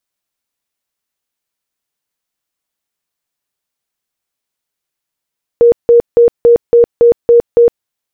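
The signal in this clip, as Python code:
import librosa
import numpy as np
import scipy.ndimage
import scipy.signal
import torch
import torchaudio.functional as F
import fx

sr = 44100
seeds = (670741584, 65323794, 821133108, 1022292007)

y = fx.tone_burst(sr, hz=472.0, cycles=52, every_s=0.28, bursts=8, level_db=-2.5)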